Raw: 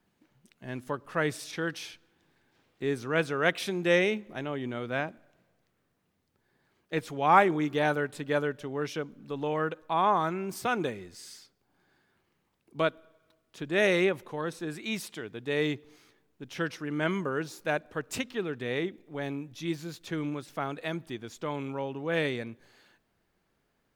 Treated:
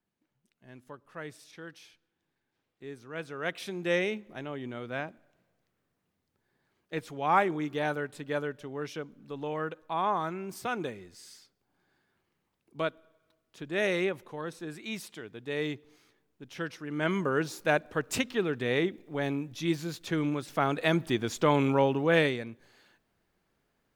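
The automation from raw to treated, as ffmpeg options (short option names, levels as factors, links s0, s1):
-af "volume=3.16,afade=t=in:st=3.09:d=0.82:silence=0.354813,afade=t=in:st=16.86:d=0.5:silence=0.421697,afade=t=in:st=20.39:d=0.82:silence=0.473151,afade=t=out:st=21.83:d=0.55:silence=0.281838"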